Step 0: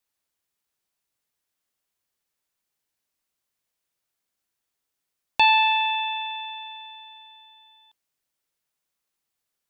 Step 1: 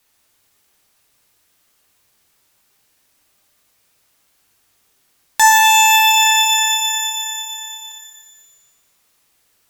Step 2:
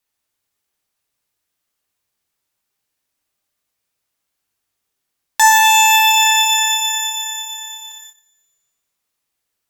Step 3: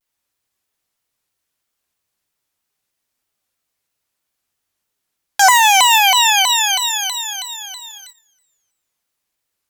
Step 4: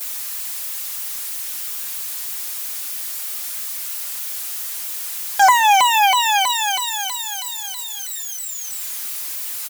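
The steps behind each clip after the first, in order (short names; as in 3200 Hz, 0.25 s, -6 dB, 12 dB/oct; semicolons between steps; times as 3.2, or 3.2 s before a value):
in parallel at +3 dB: compressor, threshold -28 dBFS, peak gain reduction 13.5 dB; on the sum: sine folder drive 14 dB, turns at -1 dBFS; shimmer reverb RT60 1.1 s, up +12 st, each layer -2 dB, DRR 2 dB; gain -7.5 dB
gate -39 dBFS, range -15 dB
shaped vibrato saw down 3.1 Hz, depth 250 cents
switching spikes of -13.5 dBFS; high shelf 2300 Hz -11.5 dB; comb 4.9 ms, depth 40%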